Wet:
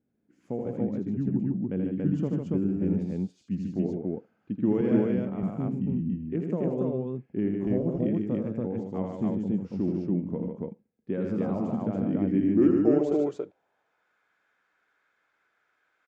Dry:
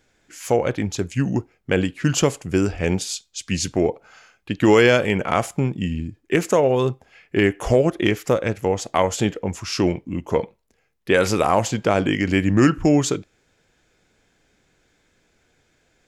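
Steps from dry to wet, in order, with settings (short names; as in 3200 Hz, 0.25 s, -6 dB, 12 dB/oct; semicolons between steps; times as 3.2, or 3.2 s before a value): band-pass sweep 210 Hz -> 1300 Hz, 12.15–14.02; loudspeakers at several distances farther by 28 m -5 dB, 51 m -5 dB, 97 m -1 dB; 4.81–5.43 three-band expander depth 70%; gain -3.5 dB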